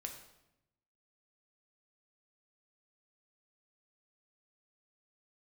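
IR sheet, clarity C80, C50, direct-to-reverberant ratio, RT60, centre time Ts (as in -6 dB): 10.0 dB, 7.5 dB, 3.0 dB, 0.90 s, 22 ms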